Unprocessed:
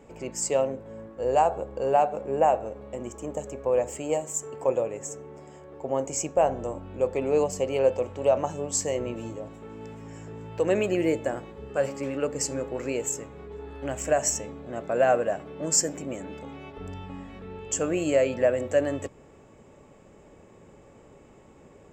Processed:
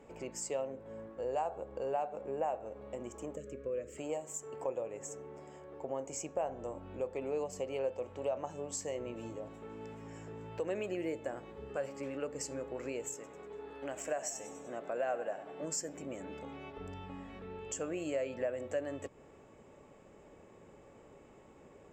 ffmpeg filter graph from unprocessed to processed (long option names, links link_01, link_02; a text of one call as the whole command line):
ffmpeg -i in.wav -filter_complex "[0:a]asettb=1/sr,asplit=3[link_01][link_02][link_03];[link_01]atrim=end=3.364[link_04];[link_02]atrim=start=3.36:end=3.98,asetpts=PTS-STARTPTS,afade=type=in:duration=0.004:curve=qsin,afade=type=out:start_time=0.616:duration=0.004:curve=qsin,asuperstop=centerf=830:order=4:qfactor=1,highshelf=frequency=2700:gain=-8[link_05];[link_03]atrim=start=3.976[link_06];[link_04][link_05]acrossfade=duration=0.004:curve1=hsin:curve2=qsin[link_07];[link_07][link_06]acrossfade=duration=0.004:curve1=qsin:curve2=hsin,asettb=1/sr,asplit=3[link_08][link_09][link_10];[link_08]atrim=end=13.144[link_11];[link_09]atrim=start=13.14:end=15.63,asetpts=PTS-STARTPTS,afade=type=in:duration=0.004:curve=qsin,afade=type=out:start_time=2.486:duration=0.004:curve=qsin,equalizer=frequency=70:width=0.62:gain=-13.5,asplit=5[link_12][link_13][link_14][link_15][link_16];[link_13]adelay=97,afreqshift=38,volume=-15.5dB[link_17];[link_14]adelay=194,afreqshift=76,volume=-21.9dB[link_18];[link_15]adelay=291,afreqshift=114,volume=-28.3dB[link_19];[link_16]adelay=388,afreqshift=152,volume=-34.6dB[link_20];[link_12][link_17][link_18][link_19][link_20]amix=inputs=5:normalize=0,atrim=end_sample=109809[link_21];[link_10]atrim=start=15.626[link_22];[link_11][link_21]acrossfade=duration=0.004:curve1=hsin:curve2=qsin[link_23];[link_23][link_22]acrossfade=duration=0.004:curve1=qsin:curve2=hsin,acompressor=threshold=-35dB:ratio=2,bass=frequency=250:gain=-4,treble=frequency=4000:gain=-3,volume=-4dB" out.wav